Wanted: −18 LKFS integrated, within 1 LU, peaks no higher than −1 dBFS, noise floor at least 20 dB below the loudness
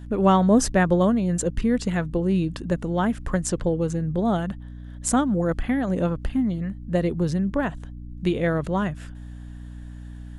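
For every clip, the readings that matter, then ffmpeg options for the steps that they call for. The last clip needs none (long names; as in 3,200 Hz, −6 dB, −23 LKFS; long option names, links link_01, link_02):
mains hum 60 Hz; hum harmonics up to 300 Hz; level of the hum −36 dBFS; integrated loudness −23.5 LKFS; sample peak −7.0 dBFS; target loudness −18.0 LKFS
→ -af "bandreject=frequency=60:width_type=h:width=6,bandreject=frequency=120:width_type=h:width=6,bandreject=frequency=180:width_type=h:width=6,bandreject=frequency=240:width_type=h:width=6,bandreject=frequency=300:width_type=h:width=6"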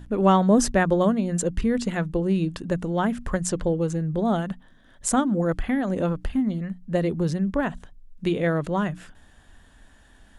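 mains hum none found; integrated loudness −24.5 LKFS; sample peak −8.0 dBFS; target loudness −18.0 LKFS
→ -af "volume=6.5dB"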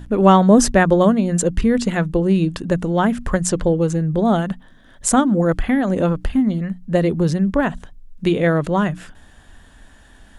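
integrated loudness −18.0 LKFS; sample peak −1.5 dBFS; background noise floor −48 dBFS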